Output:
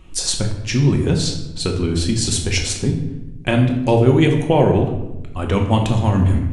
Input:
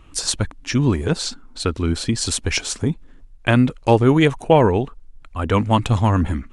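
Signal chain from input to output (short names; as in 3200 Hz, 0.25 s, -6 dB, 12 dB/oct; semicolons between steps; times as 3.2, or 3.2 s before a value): bell 1300 Hz -7 dB 1 oct; in parallel at -1 dB: compressor, threshold -22 dBFS, peak gain reduction 12 dB; on the sum: shoebox room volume 370 m³, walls mixed, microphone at 0.99 m; gain -3.5 dB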